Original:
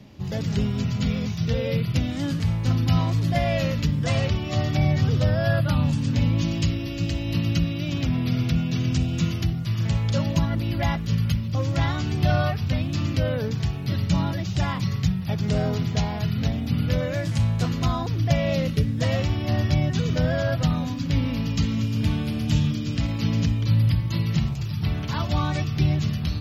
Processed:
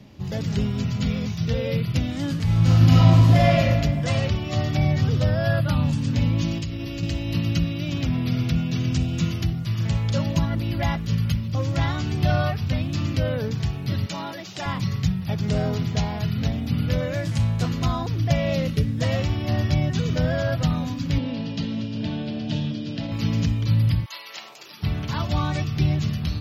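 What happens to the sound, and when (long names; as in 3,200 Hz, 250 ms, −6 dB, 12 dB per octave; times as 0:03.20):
0:02.44–0:03.53: thrown reverb, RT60 1.8 s, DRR −5 dB
0:06.58–0:07.03: downward compressor, threshold −25 dBFS
0:14.06–0:14.66: high-pass filter 360 Hz
0:21.18–0:23.12: loudspeaker in its box 170–4,800 Hz, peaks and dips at 620 Hz +6 dB, 1,200 Hz −9 dB, 2,200 Hz −7 dB
0:24.04–0:24.82: high-pass filter 800 Hz → 320 Hz 24 dB per octave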